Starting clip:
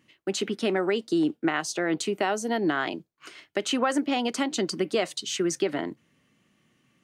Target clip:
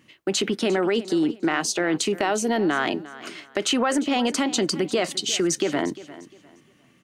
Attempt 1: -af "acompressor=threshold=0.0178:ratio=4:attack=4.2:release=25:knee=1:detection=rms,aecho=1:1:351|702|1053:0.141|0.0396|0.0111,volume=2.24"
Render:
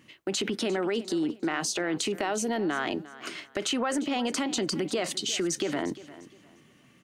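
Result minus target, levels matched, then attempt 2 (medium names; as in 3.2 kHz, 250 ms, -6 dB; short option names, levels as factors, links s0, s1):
compression: peak gain reduction +6.5 dB
-af "acompressor=threshold=0.0473:ratio=4:attack=4.2:release=25:knee=1:detection=rms,aecho=1:1:351|702|1053:0.141|0.0396|0.0111,volume=2.24"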